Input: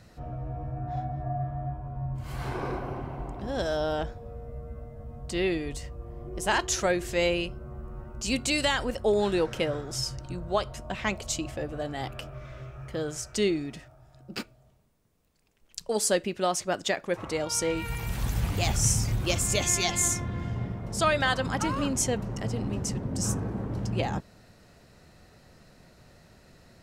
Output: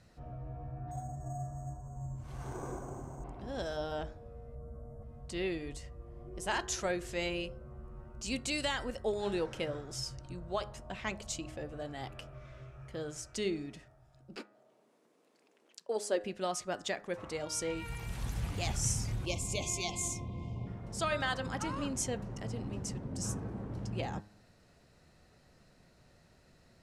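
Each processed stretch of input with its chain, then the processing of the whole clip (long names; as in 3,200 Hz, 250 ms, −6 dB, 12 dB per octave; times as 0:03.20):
0:00.91–0:03.24: parametric band 2,600 Hz −12.5 dB 0.98 octaves + notch filter 4,200 Hz, Q 16 + bad sample-rate conversion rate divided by 6×, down none, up hold
0:04.55–0:05.03: Butterworth band-reject 2,900 Hz, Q 0.57 + envelope flattener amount 50%
0:14.36–0:16.21: high-pass filter 300 Hz 24 dB per octave + spectral tilt −2.5 dB per octave + upward compression, threshold −47 dBFS
0:19.25–0:20.67: elliptic band-stop filter 1,100–2,200 Hz + high-shelf EQ 7,600 Hz −5.5 dB
whole clip: low-pass filter 12,000 Hz 24 dB per octave; hum removal 103.6 Hz, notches 19; level −8 dB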